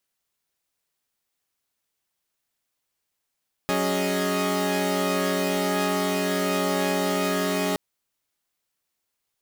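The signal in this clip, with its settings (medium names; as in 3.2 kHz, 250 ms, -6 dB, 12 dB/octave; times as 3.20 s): chord F#3/C#4/G#4/D#5 saw, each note -25.5 dBFS 4.07 s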